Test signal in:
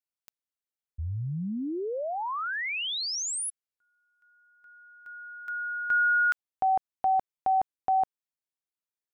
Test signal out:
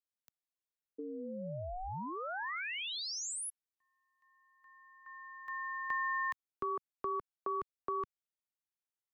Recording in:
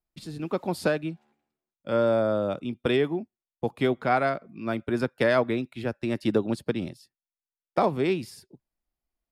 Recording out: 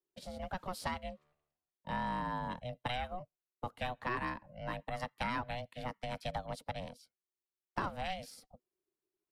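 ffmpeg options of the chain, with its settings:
ffmpeg -i in.wav -filter_complex "[0:a]aeval=exprs='val(0)*sin(2*PI*370*n/s)':channel_layout=same,acrossover=split=160|1100[link_01][link_02][link_03];[link_01]acompressor=threshold=-41dB:ratio=4[link_04];[link_02]acompressor=threshold=-37dB:ratio=4[link_05];[link_03]acompressor=threshold=-32dB:ratio=4[link_06];[link_04][link_05][link_06]amix=inputs=3:normalize=0,volume=-4dB" out.wav

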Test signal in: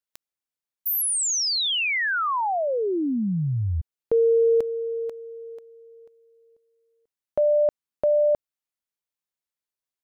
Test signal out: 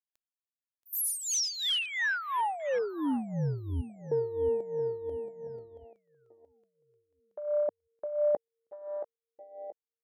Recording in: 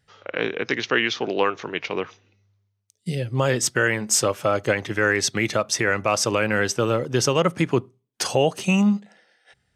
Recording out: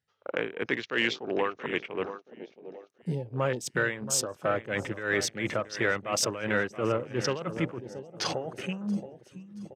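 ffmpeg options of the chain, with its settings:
ffmpeg -i in.wav -af "lowshelf=frequency=76:gain=-7,areverse,acompressor=threshold=-30dB:ratio=6:attack=36:release=27:knee=6:detection=peak,areverse,highpass=frequency=43:poles=1,aecho=1:1:677|1354|2031|2708|3385|4062:0.266|0.144|0.0776|0.0419|0.0226|0.0122,afwtdn=0.02,tremolo=f=2.9:d=0.76,acontrast=85,volume=-6.5dB" out.wav

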